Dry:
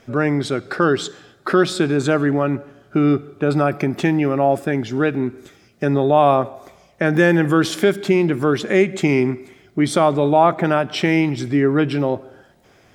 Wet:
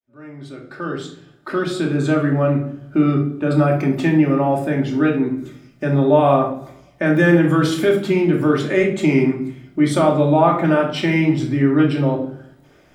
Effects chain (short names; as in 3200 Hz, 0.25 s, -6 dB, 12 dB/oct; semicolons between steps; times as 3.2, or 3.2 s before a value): opening faded in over 2.56 s; bell 5900 Hz -3 dB; shoebox room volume 710 m³, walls furnished, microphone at 2.6 m; gain -4 dB